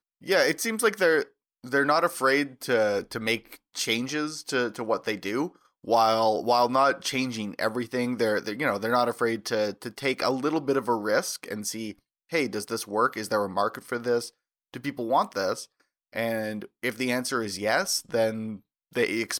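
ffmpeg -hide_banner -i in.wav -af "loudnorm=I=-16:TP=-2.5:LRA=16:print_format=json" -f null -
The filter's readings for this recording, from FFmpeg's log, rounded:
"input_i" : "-26.8",
"input_tp" : "-10.5",
"input_lra" : "3.7",
"input_thresh" : "-37.0",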